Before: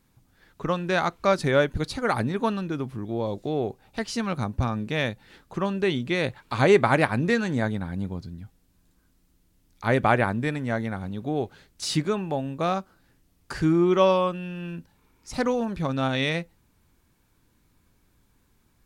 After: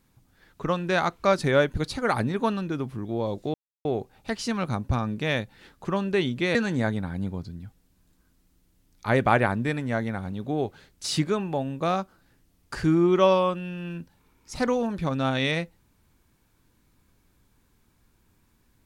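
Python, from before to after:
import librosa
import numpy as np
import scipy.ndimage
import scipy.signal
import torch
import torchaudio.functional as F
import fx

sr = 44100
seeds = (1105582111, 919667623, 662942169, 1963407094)

y = fx.edit(x, sr, fx.insert_silence(at_s=3.54, length_s=0.31),
    fx.cut(start_s=6.24, length_s=1.09), tone=tone)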